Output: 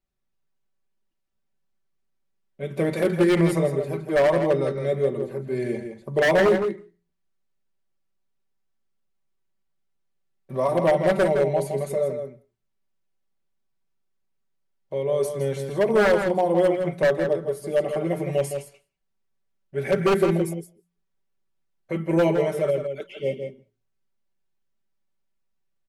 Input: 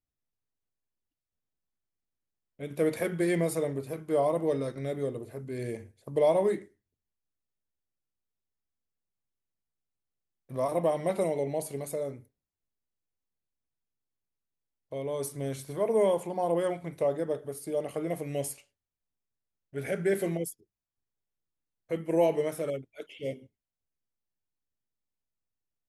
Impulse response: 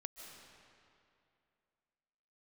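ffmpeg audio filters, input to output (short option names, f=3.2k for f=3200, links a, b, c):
-filter_complex "[0:a]lowpass=f=3.2k:p=1,aecho=1:1:5.2:0.81,bandreject=f=57.88:t=h:w=4,bandreject=f=115.76:t=h:w=4,bandreject=f=173.64:t=h:w=4,aeval=exprs='0.112*(abs(mod(val(0)/0.112+3,4)-2)-1)':c=same,asplit=2[a][b];[b]adelay=163.3,volume=-7dB,highshelf=f=4k:g=-3.67[c];[a][c]amix=inputs=2:normalize=0,asplit=2[d][e];[1:a]atrim=start_sample=2205,afade=t=out:st=0.25:d=0.01,atrim=end_sample=11466[f];[e][f]afir=irnorm=-1:irlink=0,volume=-13.5dB[g];[d][g]amix=inputs=2:normalize=0,volume=5dB"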